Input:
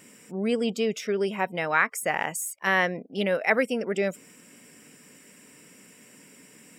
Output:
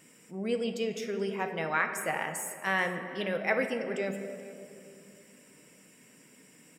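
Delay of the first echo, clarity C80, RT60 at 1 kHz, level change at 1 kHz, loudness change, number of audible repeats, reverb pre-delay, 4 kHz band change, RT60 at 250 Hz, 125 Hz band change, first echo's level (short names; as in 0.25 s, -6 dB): 0.431 s, 8.5 dB, 2.1 s, -5.0 dB, -5.5 dB, 1, 6 ms, -5.5 dB, 3.4 s, -4.5 dB, -21.0 dB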